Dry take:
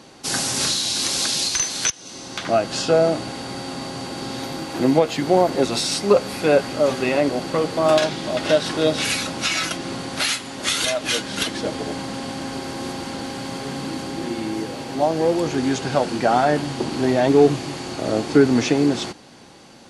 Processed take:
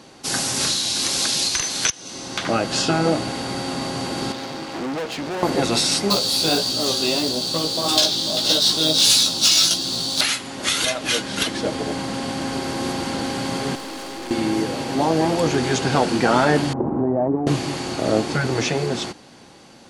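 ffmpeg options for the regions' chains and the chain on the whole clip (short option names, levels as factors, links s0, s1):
-filter_complex "[0:a]asettb=1/sr,asplit=3[s0][s1][s2];[s0]atrim=end=4.324[s3];[s1]atrim=start=4.32:end=5.43,asetpts=PTS-STARTPTS,afade=t=in:d=0.004:c=qsin,afade=t=out:st=1.106:d=0.004:c=qsin,acrossover=split=6800[s4][s5];[s5]acompressor=threshold=0.00112:ratio=4:attack=1:release=60[s6];[s4][s6]amix=inputs=2:normalize=0,aeval=exprs='(tanh(25.1*val(0)+0.8)-tanh(0.8))/25.1':c=same,highpass=f=150:p=1[s7];[s2]atrim=start=5.426[s8];[s3][s7]acrossfade=d=0.004:c1=hsin:c2=qsin[s9];[s9][s8]acrossfade=d=0.004:c1=qsin:c2=hsin,asettb=1/sr,asplit=3[s10][s11][s12];[s10]atrim=end=6.104[s13];[s11]atrim=start=6.1:end=10.21,asetpts=PTS-STARTPTS,afade=t=in:d=0.004:c=qsin,afade=t=out:st=4.106:d=0.004:c=qsin,highshelf=f=2900:t=q:w=3:g=11,acrusher=bits=4:mode=log:mix=0:aa=0.000001,flanger=delay=15.5:depth=3.4:speed=1.6[s14];[s12]atrim=start=10.206[s15];[s13][s14]acrossfade=d=0.004:c1=hsin:c2=qsin[s16];[s16][s15]acrossfade=d=0.004:c1=qsin:c2=hsin,asettb=1/sr,asplit=3[s17][s18][s19];[s17]atrim=end=13.754[s20];[s18]atrim=start=13.75:end=14.31,asetpts=PTS-STARTPTS,afade=t=in:d=0.004:c=qsin,afade=t=out:st=0.556:d=0.004:c=qsin,highpass=370,aeval=exprs='(tanh(50.1*val(0)+0.45)-tanh(0.45))/50.1':c=same[s21];[s19]atrim=start=14.306[s22];[s20][s21]acrossfade=d=0.004:c1=hsin:c2=qsin[s23];[s23][s22]acrossfade=d=0.004:c1=qsin:c2=hsin,asettb=1/sr,asplit=3[s24][s25][s26];[s24]atrim=end=16.734[s27];[s25]atrim=start=16.73:end=17.47,asetpts=PTS-STARTPTS,afade=t=in:d=0.004:c=qsin,afade=t=out:st=0.736:d=0.004:c=qsin,lowpass=f=1000:w=0.5412,lowpass=f=1000:w=1.3066,acompressor=threshold=0.1:ratio=5:attack=3.2:release=140:knee=1:detection=peak[s28];[s26]atrim=start=17.466[s29];[s27][s28]acrossfade=d=0.004:c1=hsin:c2=qsin[s30];[s30][s29]acrossfade=d=0.004:c1=qsin:c2=hsin,afftfilt=real='re*lt(hypot(re,im),0.891)':imag='im*lt(hypot(re,im),0.891)':win_size=1024:overlap=0.75,dynaudnorm=f=220:g=17:m=1.88"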